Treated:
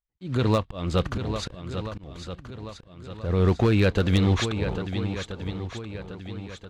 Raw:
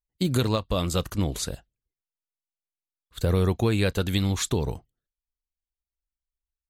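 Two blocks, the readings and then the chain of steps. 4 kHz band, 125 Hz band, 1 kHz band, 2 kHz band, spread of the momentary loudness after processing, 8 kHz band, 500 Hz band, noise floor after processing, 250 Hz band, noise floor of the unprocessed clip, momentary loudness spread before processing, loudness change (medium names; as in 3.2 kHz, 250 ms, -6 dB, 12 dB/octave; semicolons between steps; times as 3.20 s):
-1.0 dB, +2.5 dB, +2.5 dB, +3.0 dB, 17 LU, -8.5 dB, +2.0 dB, -54 dBFS, +2.0 dB, under -85 dBFS, 9 LU, 0.0 dB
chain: block-companded coder 5-bit; low-pass 3.1 kHz 12 dB/octave; gate -48 dBFS, range -7 dB; in parallel at +1 dB: peak limiter -22.5 dBFS, peak gain reduction 10 dB; on the sum: slow attack 291 ms; on a send: shuffle delay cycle 1330 ms, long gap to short 1.5:1, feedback 40%, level -9 dB; on the sum: wavefolder -12.5 dBFS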